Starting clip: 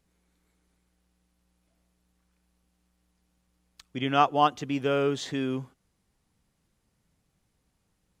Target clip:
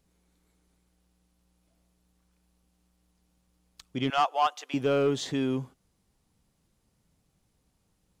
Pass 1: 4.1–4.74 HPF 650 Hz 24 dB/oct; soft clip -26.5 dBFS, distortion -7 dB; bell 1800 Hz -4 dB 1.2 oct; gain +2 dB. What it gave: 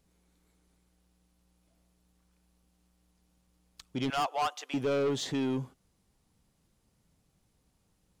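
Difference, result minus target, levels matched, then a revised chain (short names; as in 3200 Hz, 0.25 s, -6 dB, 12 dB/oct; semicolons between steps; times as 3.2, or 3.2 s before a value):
soft clip: distortion +8 dB
4.1–4.74 HPF 650 Hz 24 dB/oct; soft clip -17 dBFS, distortion -14 dB; bell 1800 Hz -4 dB 1.2 oct; gain +2 dB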